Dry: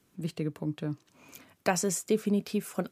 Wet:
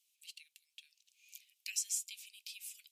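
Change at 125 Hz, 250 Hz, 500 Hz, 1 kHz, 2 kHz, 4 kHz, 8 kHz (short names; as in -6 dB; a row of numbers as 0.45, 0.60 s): under -40 dB, under -40 dB, under -40 dB, under -40 dB, -12.5 dB, -3.0 dB, -3.0 dB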